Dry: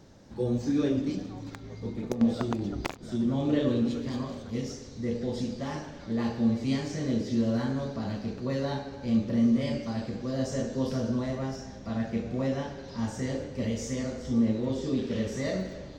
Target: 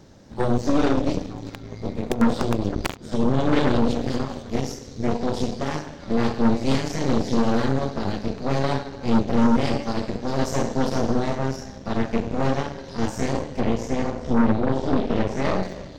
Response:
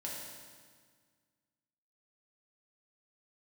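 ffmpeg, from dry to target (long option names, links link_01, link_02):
-filter_complex "[0:a]asettb=1/sr,asplit=3[link_01][link_02][link_03];[link_01]atrim=end=13.604[link_04];[link_02]atrim=start=13.6:end=15.63,asetpts=PTS-STARTPTS,afade=type=in:duration=0.004:curve=qsin,afade=type=out:start_time=2.026:duration=0.004:curve=qsin,aemphasis=mode=reproduction:type=75fm[link_05];[link_03]atrim=start=15.626[link_06];[link_04][link_05]acrossfade=duration=0.004:curve1=hsin:curve2=qsin[link_07];[link_07][link_06]acrossfade=duration=0.004:curve1=qsin:curve2=hsin,aeval=exprs='0.211*(cos(1*acos(clip(val(0)/0.211,-1,1)))-cos(1*PI/2))+0.0473*(cos(8*acos(clip(val(0)/0.211,-1,1)))-cos(8*PI/2))':channel_layout=same,volume=4.5dB"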